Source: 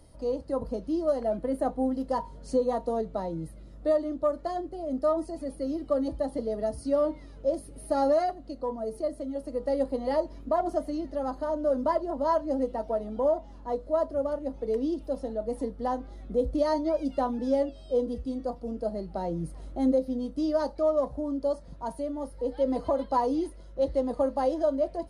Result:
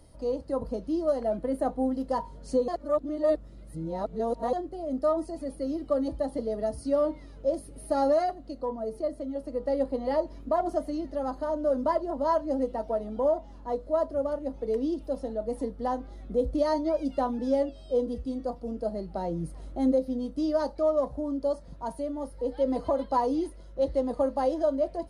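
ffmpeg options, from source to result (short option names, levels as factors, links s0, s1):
-filter_complex "[0:a]asettb=1/sr,asplit=3[s0][s1][s2];[s0]atrim=end=8.654[s3];[s1]atrim=start=8.65:end=10.27,asetpts=PTS-STARTPTS,afade=t=in:d=0.004:c=qsin,afade=t=out:st=1.616:d=0.004:c=qsin,highshelf=f=6600:g=-7.5[s4];[s2]atrim=start=10.266[s5];[s3][s4]acrossfade=d=0.004:c1=hsin:c2=qsin[s6];[s6][s5]acrossfade=d=0.004:c1=qsin:c2=hsin,asplit=3[s7][s8][s9];[s7]atrim=end=2.682[s10];[s8]atrim=start=2.678:end=4.532,asetpts=PTS-STARTPTS,areverse[s11];[s9]atrim=start=4.528[s12];[s10][s11]acrossfade=d=0.004:c1=hsin:c2=hsin[s13];[s13][s12]acrossfade=d=0.004:c1=hsin:c2=hsin"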